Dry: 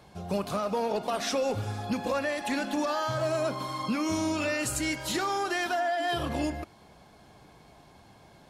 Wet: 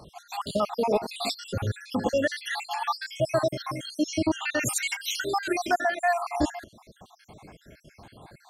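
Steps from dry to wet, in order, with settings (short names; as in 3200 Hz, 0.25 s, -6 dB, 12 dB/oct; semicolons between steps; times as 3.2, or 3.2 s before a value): random spectral dropouts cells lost 67%; 4.03–4.6 Bessel low-pass 6000 Hz, order 2; gain +7.5 dB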